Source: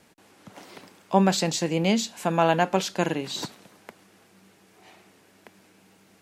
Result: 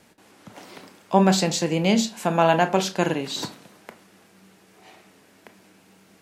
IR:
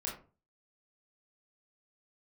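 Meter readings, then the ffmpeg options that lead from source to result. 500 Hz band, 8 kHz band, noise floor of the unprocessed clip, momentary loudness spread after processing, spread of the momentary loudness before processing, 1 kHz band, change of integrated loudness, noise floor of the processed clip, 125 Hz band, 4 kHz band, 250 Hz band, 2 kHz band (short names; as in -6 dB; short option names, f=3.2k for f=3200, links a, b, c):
+3.0 dB, +2.5 dB, -59 dBFS, 10 LU, 9 LU, +2.5 dB, +2.5 dB, -56 dBFS, +2.5 dB, +2.5 dB, +3.0 dB, +2.5 dB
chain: -filter_complex "[0:a]asplit=2[a][b];[1:a]atrim=start_sample=2205[c];[b][c]afir=irnorm=-1:irlink=0,volume=-7.5dB[d];[a][d]amix=inputs=2:normalize=0"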